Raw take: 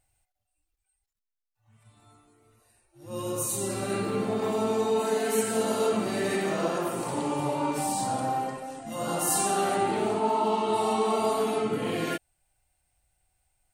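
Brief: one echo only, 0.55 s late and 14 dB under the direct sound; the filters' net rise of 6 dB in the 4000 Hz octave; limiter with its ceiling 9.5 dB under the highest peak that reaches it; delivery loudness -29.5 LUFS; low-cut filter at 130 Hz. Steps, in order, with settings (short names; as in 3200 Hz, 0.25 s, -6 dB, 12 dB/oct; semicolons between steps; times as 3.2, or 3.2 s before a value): HPF 130 Hz; bell 4000 Hz +7.5 dB; limiter -22 dBFS; echo 0.55 s -14 dB; gain +1 dB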